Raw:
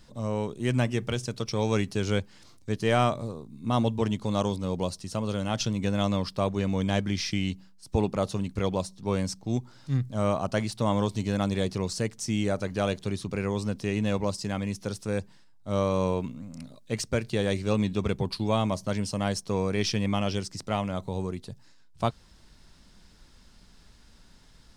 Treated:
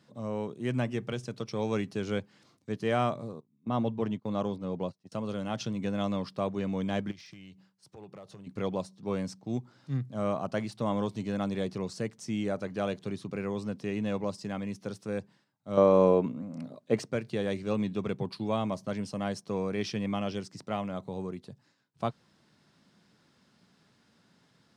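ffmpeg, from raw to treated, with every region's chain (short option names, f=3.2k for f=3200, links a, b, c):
-filter_complex "[0:a]asettb=1/sr,asplit=3[a][b][c];[a]atrim=end=3.404[d];[b]atrim=start=3.4:end=5.12,asetpts=PTS-STARTPTS,afade=t=in:d=0.004:c=qsin,afade=t=out:st=1.716:d=0.004:c=qsin,lowpass=f=3.1k:p=1,agate=range=-22dB:threshold=-35dB:ratio=16:release=100:detection=peak[e];[c]atrim=start=5.116[f];[d][e]acrossfade=d=0.004:c1=hsin:c2=qsin[g];[g][f]acrossfade=d=0.004:c1=qsin:c2=hsin,asettb=1/sr,asplit=3[h][i][j];[h]atrim=end=7.114[k];[i]atrim=start=7.11:end=8.47,asetpts=PTS-STARTPTS,afade=t=in:d=0.004:c=qsin,afade=t=out:st=1.356:d=0.004:c=qsin,equalizer=f=240:t=o:w=0.38:g=-12.5,acompressor=threshold=-39dB:ratio=6:attack=3.2:release=140:knee=1:detection=peak,aeval=exprs='0.02*(abs(mod(val(0)/0.02+3,4)-2)-1)':c=same[l];[j]atrim=start=8.466[m];[k][l]acrossfade=d=0.004:c1=hsin:c2=qsin[n];[n][m]acrossfade=d=0.004:c1=qsin:c2=hsin,asettb=1/sr,asplit=3[o][p][q];[o]atrim=end=15.774[r];[p]atrim=start=15.77:end=17.11,asetpts=PTS-STARTPTS,afade=t=in:d=0.004:c=qsin,afade=t=out:st=1.336:d=0.004:c=qsin,highpass=41,equalizer=f=520:w=0.39:g=10.5[s];[q]atrim=start=17.106[t];[r][s]acrossfade=d=0.004:c1=hsin:c2=qsin[u];[u][t]acrossfade=d=0.004:c1=qsin:c2=hsin,highpass=f=120:w=0.5412,highpass=f=120:w=1.3066,highshelf=f=3.8k:g=-10,bandreject=f=920:w=22,volume=-3.5dB"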